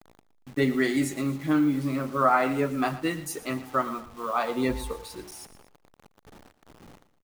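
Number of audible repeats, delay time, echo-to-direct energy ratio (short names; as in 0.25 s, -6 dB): 2, 0.116 s, -15.0 dB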